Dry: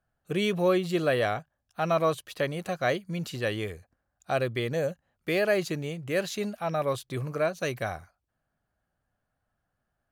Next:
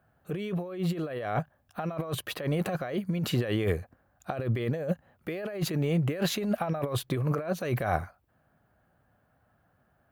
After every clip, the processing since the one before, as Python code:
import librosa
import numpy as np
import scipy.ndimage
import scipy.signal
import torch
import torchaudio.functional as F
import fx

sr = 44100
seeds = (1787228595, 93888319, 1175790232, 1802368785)

y = scipy.signal.sosfilt(scipy.signal.butter(2, 71.0, 'highpass', fs=sr, output='sos'), x)
y = fx.peak_eq(y, sr, hz=6400.0, db=-12.5, octaves=2.1)
y = fx.over_compress(y, sr, threshold_db=-37.0, ratio=-1.0)
y = F.gain(torch.from_numpy(y), 6.5).numpy()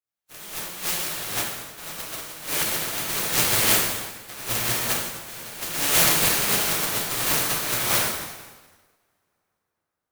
y = fx.spec_flatten(x, sr, power=0.11)
y = fx.rev_plate(y, sr, seeds[0], rt60_s=4.0, hf_ratio=0.7, predelay_ms=0, drr_db=-8.5)
y = fx.upward_expand(y, sr, threshold_db=-40.0, expansion=2.5)
y = F.gain(torch.from_numpy(y), 2.5).numpy()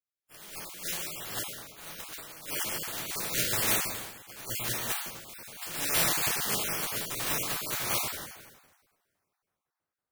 y = fx.spec_dropout(x, sr, seeds[1], share_pct=21)
y = F.gain(torch.from_numpy(y), -7.0).numpy()